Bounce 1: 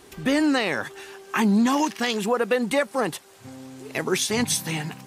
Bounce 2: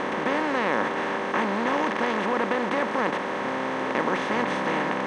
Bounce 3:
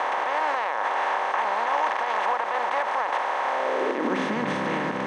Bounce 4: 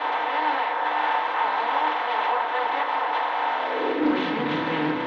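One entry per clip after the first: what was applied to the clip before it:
per-bin compression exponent 0.2; LPF 1800 Hz 12 dB/oct; low shelf 440 Hz -11.5 dB; gain -5 dB
limiter -17.5 dBFS, peak gain reduction 8 dB; high-pass sweep 770 Hz -> 100 Hz, 3.49–4.62
ladder low-pass 4100 Hz, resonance 55%; FDN reverb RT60 0.4 s, low-frequency decay 1.05×, high-frequency decay 0.6×, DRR -9 dB; Doppler distortion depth 0.15 ms

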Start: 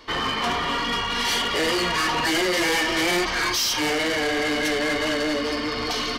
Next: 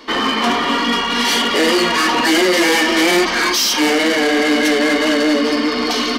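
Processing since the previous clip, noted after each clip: resonant low shelf 170 Hz -10 dB, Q 3; gain +7 dB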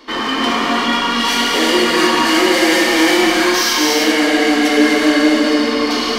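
non-linear reverb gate 0.42 s flat, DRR -3 dB; gain -4 dB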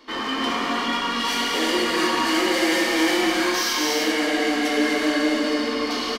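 doubler 15 ms -14 dB; gain -8 dB

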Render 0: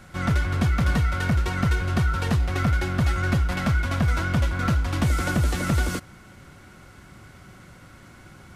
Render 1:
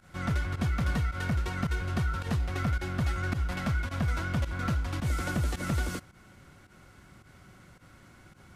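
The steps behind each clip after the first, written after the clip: pump 108 bpm, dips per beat 1, -15 dB, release 86 ms; gain -7 dB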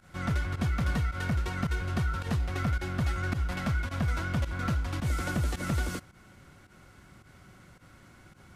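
nothing audible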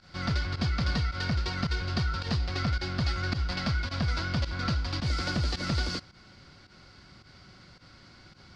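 synth low-pass 4700 Hz, resonance Q 6.6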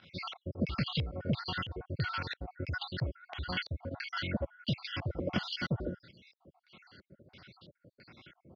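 random spectral dropouts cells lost 64%; LFO low-pass square 1.5 Hz 560–3200 Hz; BPF 110–6800 Hz

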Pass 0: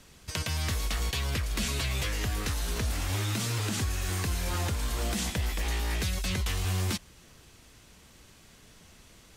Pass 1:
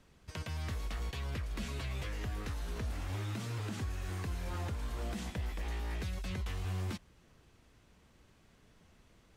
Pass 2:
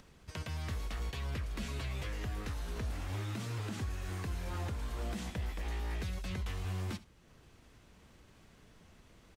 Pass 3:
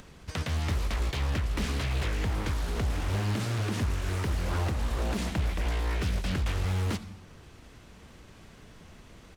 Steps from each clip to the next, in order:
high shelf 3100 Hz -12 dB; gain -7 dB
upward compressor, threshold -53 dBFS; echo 71 ms -18 dB
reverb RT60 1.4 s, pre-delay 73 ms, DRR 15.5 dB; Doppler distortion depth 0.87 ms; gain +9 dB

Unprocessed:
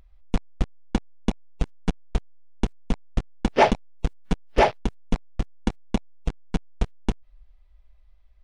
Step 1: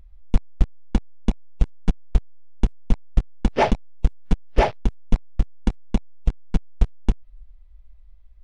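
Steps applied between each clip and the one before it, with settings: low shelf 140 Hz +10.5 dB; gain -2.5 dB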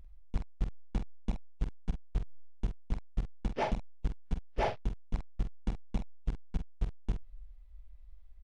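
reverse; compressor 6:1, threshold -24 dBFS, peak gain reduction 15.5 dB; reverse; doubler 46 ms -8 dB; gain -4.5 dB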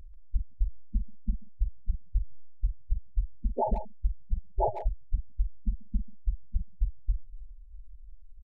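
spectral gate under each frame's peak -10 dB strong; speakerphone echo 0.14 s, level -10 dB; gain +5.5 dB

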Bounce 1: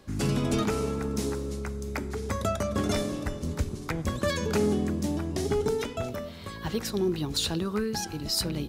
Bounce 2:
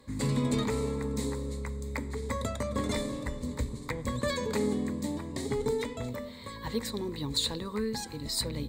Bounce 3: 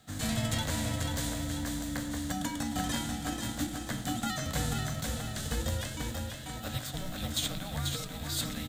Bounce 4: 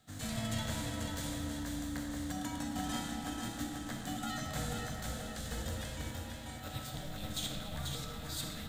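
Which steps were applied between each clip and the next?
ripple EQ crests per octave 1, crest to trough 12 dB; gain -4.5 dB
spectral whitening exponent 0.6; frequency shift -360 Hz; on a send: feedback echo 0.488 s, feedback 47%, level -5 dB; on the sum: gain -3 dB
digital reverb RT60 2.4 s, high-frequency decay 0.5×, pre-delay 5 ms, DRR 1.5 dB; gain -7.5 dB

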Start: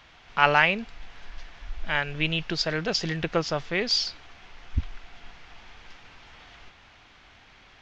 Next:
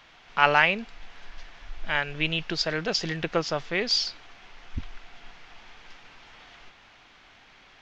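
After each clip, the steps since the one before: bell 61 Hz -9.5 dB 1.9 oct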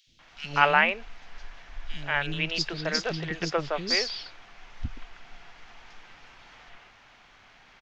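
three bands offset in time highs, lows, mids 70/190 ms, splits 330/3500 Hz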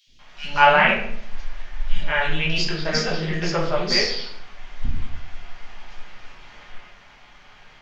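reverb RT60 0.65 s, pre-delay 5 ms, DRR -4 dB

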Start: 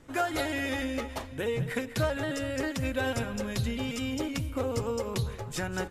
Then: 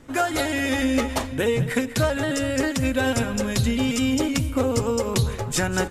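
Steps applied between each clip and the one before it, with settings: dynamic EQ 7900 Hz, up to +5 dB, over -55 dBFS, Q 1.1; vocal rider 0.5 s; bell 250 Hz +5 dB 0.23 oct; gain +7.5 dB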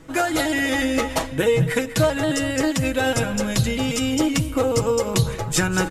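comb 6.2 ms, depth 54%; reverse; upward compressor, threshold -27 dBFS; reverse; gain +1.5 dB

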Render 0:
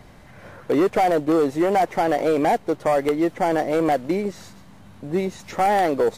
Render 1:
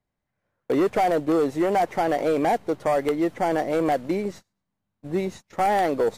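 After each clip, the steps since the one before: gate -34 dBFS, range -33 dB; gain -2.5 dB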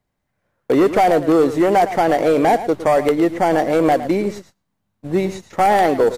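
echo 0.111 s -13 dB; gain +7 dB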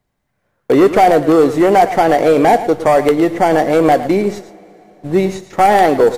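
reverb, pre-delay 3 ms, DRR 14 dB; gain +4 dB

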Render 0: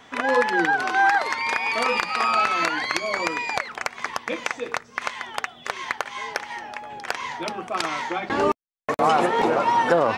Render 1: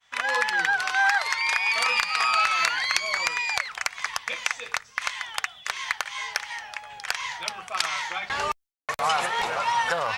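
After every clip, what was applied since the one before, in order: expander -40 dBFS; passive tone stack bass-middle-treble 10-0-10; gain +5.5 dB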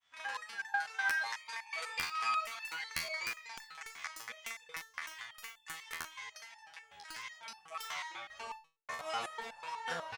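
early reflections 41 ms -9 dB, 56 ms -15.5 dB; wrapped overs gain 7.5 dB; stepped resonator 8.1 Hz 82–880 Hz; gain -3.5 dB

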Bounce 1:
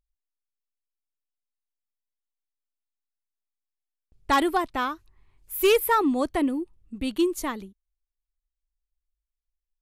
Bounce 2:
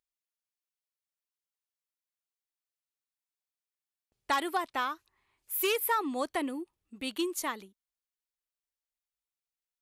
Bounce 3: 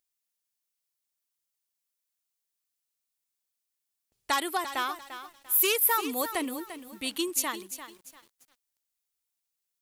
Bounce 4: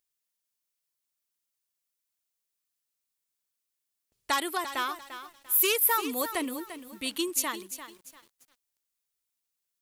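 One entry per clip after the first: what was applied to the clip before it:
HPF 790 Hz 6 dB/oct; compressor 2.5:1, threshold -27 dBFS, peak gain reduction 6.5 dB
high shelf 3800 Hz +10.5 dB; lo-fi delay 0.345 s, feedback 35%, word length 8-bit, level -11 dB
notch 780 Hz, Q 13

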